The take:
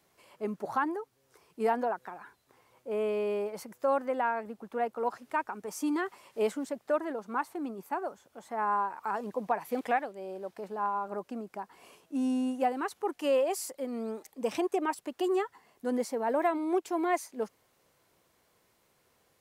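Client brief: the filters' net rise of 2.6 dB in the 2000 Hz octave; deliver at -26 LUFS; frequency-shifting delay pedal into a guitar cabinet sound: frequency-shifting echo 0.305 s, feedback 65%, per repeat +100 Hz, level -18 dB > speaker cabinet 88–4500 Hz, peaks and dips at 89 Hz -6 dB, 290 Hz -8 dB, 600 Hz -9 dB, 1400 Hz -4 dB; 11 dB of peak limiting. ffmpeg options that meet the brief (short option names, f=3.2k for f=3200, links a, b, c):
-filter_complex "[0:a]equalizer=f=2k:t=o:g=5.5,alimiter=level_in=0.5dB:limit=-24dB:level=0:latency=1,volume=-0.5dB,asplit=7[a][b][c][d][e][f][g];[b]adelay=305,afreqshift=100,volume=-18dB[h];[c]adelay=610,afreqshift=200,volume=-21.7dB[i];[d]adelay=915,afreqshift=300,volume=-25.5dB[j];[e]adelay=1220,afreqshift=400,volume=-29.2dB[k];[f]adelay=1525,afreqshift=500,volume=-33dB[l];[g]adelay=1830,afreqshift=600,volume=-36.7dB[m];[a][h][i][j][k][l][m]amix=inputs=7:normalize=0,highpass=88,equalizer=f=89:t=q:w=4:g=-6,equalizer=f=290:t=q:w=4:g=-8,equalizer=f=600:t=q:w=4:g=-9,equalizer=f=1.4k:t=q:w=4:g=-4,lowpass=f=4.5k:w=0.5412,lowpass=f=4.5k:w=1.3066,volume=12dB"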